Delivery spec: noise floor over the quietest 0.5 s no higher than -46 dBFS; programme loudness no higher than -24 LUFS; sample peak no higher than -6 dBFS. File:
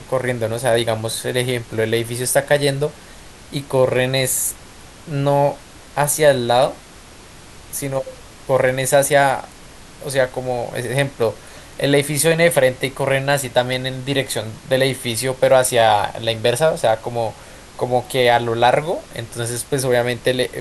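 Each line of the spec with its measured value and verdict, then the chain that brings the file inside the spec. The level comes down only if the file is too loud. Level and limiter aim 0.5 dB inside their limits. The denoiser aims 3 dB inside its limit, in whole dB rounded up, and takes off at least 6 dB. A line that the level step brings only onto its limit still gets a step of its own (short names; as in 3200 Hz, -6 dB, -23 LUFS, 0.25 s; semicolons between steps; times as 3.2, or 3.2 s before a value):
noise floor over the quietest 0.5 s -41 dBFS: fail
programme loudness -18.5 LUFS: fail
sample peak -2.5 dBFS: fail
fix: gain -6 dB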